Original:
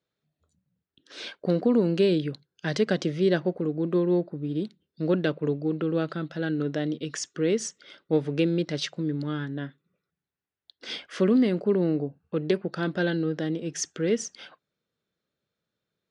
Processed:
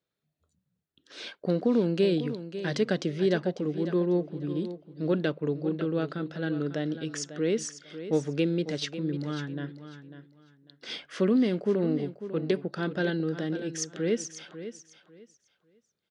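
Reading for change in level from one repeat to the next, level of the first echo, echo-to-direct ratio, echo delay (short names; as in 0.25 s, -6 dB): -13.0 dB, -12.0 dB, -12.0 dB, 0.547 s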